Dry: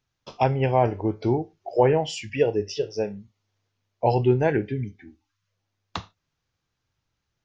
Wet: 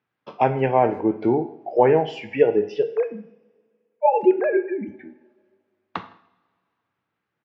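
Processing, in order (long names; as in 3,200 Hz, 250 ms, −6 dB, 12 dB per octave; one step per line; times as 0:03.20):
0:02.83–0:04.88: three sine waves on the formant tracks
Chebyshev band-pass filter 220–2,000 Hz, order 2
far-end echo of a speakerphone 160 ms, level −27 dB
coupled-rooms reverb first 0.66 s, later 2.2 s, from −20 dB, DRR 10 dB
level +4 dB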